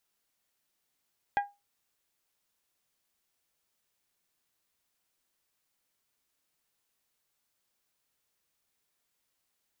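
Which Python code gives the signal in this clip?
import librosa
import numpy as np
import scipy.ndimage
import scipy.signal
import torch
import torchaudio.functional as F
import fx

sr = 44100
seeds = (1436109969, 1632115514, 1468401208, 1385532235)

y = fx.strike_glass(sr, length_s=0.89, level_db=-21.0, body='bell', hz=811.0, decay_s=0.23, tilt_db=6.5, modes=5)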